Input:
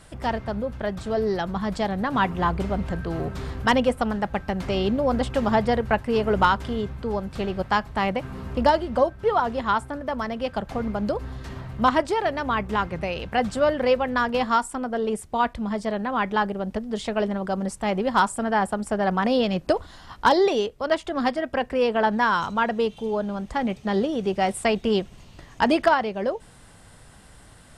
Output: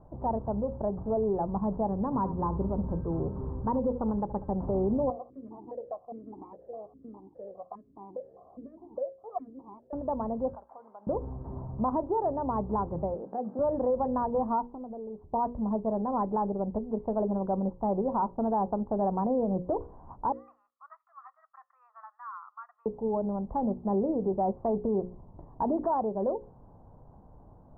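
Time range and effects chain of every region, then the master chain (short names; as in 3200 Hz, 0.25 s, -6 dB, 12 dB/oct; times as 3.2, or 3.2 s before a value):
1.88–4.51 bell 710 Hz -11.5 dB 0.27 oct + echo 72 ms -17.5 dB
5.1–9.93 minimum comb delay 1.7 ms + compressor 2.5:1, threshold -23 dBFS + vowel sequencer 4.9 Hz
10.55–11.07 HPF 1300 Hz + compressor 2:1, threshold -40 dBFS
13.14–13.59 HPF 210 Hz 24 dB/oct + bell 1000 Hz -7.5 dB 0.33 oct + compressor 2:1, threshold -30 dBFS
14.66–15.33 sample sorter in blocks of 8 samples + compressor 5:1, threshold -35 dBFS + LPF 1200 Hz
20.32–22.86 steep high-pass 1200 Hz 48 dB/oct + comb 1.6 ms
whole clip: elliptic low-pass 960 Hz, stop band 70 dB; notches 60/120/180/240/300/360/420/480/540 Hz; limiter -19 dBFS; gain -1.5 dB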